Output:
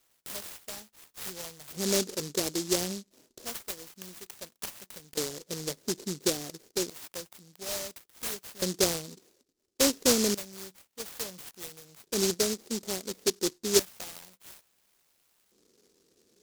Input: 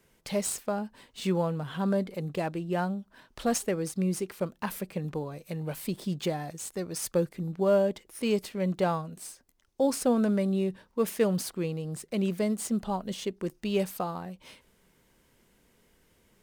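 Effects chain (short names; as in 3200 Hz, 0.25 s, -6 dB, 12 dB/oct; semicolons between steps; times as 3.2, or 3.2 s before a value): LFO band-pass square 0.29 Hz 400–2300 Hz; 12.34–13.18 low shelf 200 Hz -6.5 dB; noise-modulated delay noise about 5500 Hz, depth 0.29 ms; gain +6.5 dB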